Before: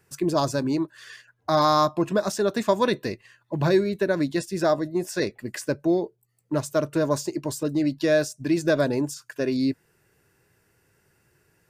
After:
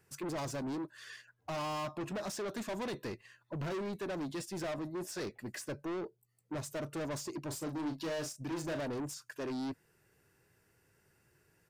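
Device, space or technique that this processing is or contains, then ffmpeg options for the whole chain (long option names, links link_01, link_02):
saturation between pre-emphasis and de-emphasis: -filter_complex "[0:a]highshelf=frequency=8200:gain=8,asoftclip=type=tanh:threshold=-30dB,highshelf=frequency=8200:gain=-8,asplit=3[link_01][link_02][link_03];[link_01]afade=type=out:start_time=7.49:duration=0.02[link_04];[link_02]asplit=2[link_05][link_06];[link_06]adelay=37,volume=-7.5dB[link_07];[link_05][link_07]amix=inputs=2:normalize=0,afade=type=in:start_time=7.49:duration=0.02,afade=type=out:start_time=8.79:duration=0.02[link_08];[link_03]afade=type=in:start_time=8.79:duration=0.02[link_09];[link_04][link_08][link_09]amix=inputs=3:normalize=0,volume=-5.5dB"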